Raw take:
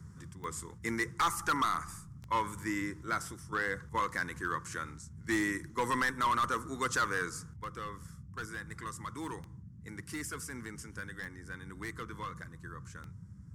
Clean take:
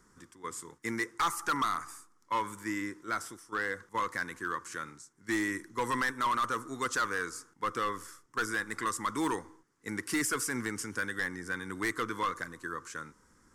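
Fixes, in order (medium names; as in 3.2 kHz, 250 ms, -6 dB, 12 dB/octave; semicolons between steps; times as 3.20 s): de-click; noise print and reduce 13 dB; trim 0 dB, from 7.56 s +9.5 dB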